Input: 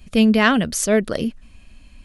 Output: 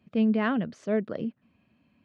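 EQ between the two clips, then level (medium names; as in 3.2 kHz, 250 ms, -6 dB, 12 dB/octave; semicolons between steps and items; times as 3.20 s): high-pass 120 Hz 24 dB/octave; tape spacing loss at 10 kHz 39 dB; -7.5 dB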